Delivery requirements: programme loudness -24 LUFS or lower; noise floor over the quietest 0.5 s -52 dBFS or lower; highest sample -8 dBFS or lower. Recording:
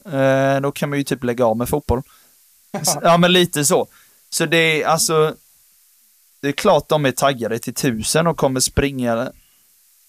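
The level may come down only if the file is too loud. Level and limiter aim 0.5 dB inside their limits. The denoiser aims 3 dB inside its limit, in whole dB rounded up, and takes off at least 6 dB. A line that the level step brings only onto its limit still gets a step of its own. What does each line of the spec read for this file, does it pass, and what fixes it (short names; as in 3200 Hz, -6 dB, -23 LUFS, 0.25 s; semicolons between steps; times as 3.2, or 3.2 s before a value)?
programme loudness -17.5 LUFS: fail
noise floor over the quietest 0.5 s -55 dBFS: OK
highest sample -4.5 dBFS: fail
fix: gain -7 dB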